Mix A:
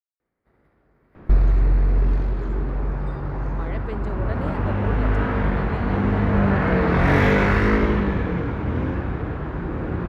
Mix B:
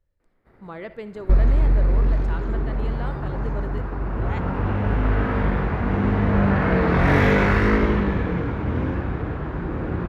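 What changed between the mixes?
speech: entry -2.90 s; first sound +7.5 dB

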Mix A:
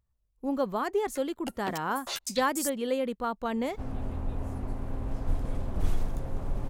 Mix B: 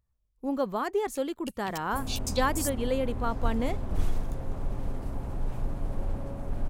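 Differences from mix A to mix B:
first sound: add brick-wall FIR band-stop 220–2200 Hz; second sound: entry -1.85 s

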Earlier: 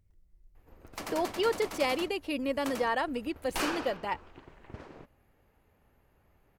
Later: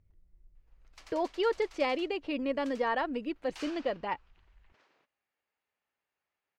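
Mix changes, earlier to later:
background: add differentiator; master: add air absorption 150 m

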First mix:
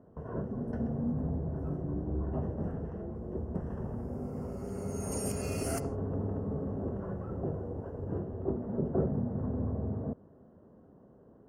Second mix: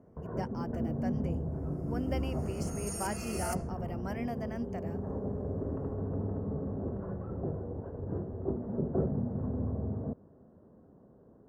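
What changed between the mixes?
speech: unmuted; first sound: add air absorption 410 m; second sound: entry -2.25 s

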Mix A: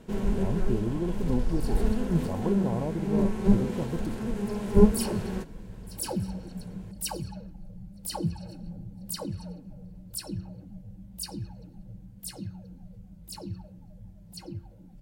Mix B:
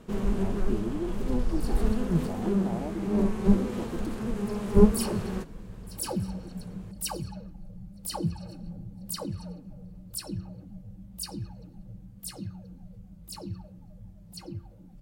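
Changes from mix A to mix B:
speech: add fixed phaser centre 740 Hz, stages 8; master: remove Butterworth band-stop 1200 Hz, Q 7.7

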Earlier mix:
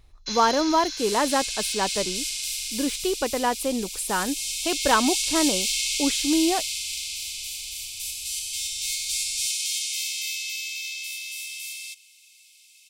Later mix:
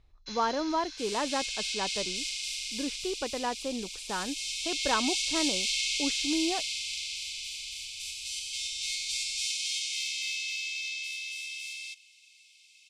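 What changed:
speech -8.0 dB; first sound -7.5 dB; master: add air absorption 87 m

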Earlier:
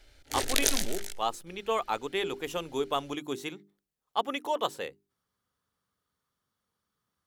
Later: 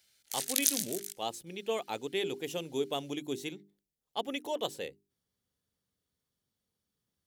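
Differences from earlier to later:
speech: add bell 1200 Hz -14 dB 1.1 oct; background: add differentiator

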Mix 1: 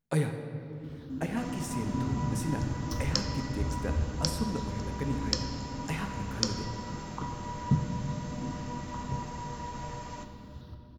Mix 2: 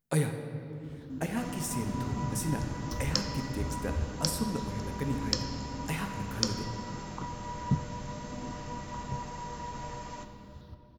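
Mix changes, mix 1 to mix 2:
speech: add high shelf 7100 Hz +10 dB; first sound: send -9.5 dB

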